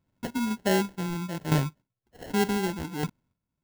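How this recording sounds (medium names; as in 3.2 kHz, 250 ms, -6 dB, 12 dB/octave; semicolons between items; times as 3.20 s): phasing stages 6, 1.7 Hz, lowest notch 470–1200 Hz; chopped level 0.66 Hz, depth 65%, duty 20%; aliases and images of a low sample rate 1.2 kHz, jitter 0%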